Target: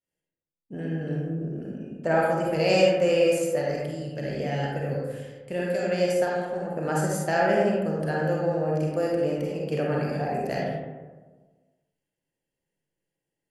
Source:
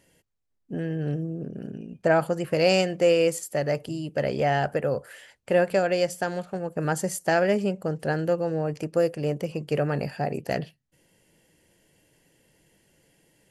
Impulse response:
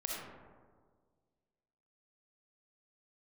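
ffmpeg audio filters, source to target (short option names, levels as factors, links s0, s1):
-filter_complex "[0:a]agate=range=0.0224:threshold=0.00355:ratio=3:detection=peak,asettb=1/sr,asplit=3[s0][s1][s2];[s0]atrim=end=3.654[s3];[s1]atrim=start=3.65:end=5.88,asetpts=PTS-STARTPTS,afade=t=in:d=0.004:c=qsin,afade=t=out:st=2.226:d=0.004:c=qsin,equalizer=f=920:t=o:w=2:g=-10[s4];[s2]atrim=start=5.876[s5];[s3][s4]acrossfade=d=0.004:c1=hsin:c2=qsin[s6];[s6][s5]acrossfade=d=0.004:c1=qsin:c2=hsin[s7];[1:a]atrim=start_sample=2205,asetrate=57330,aresample=44100[s8];[s7][s8]afir=irnorm=-1:irlink=0"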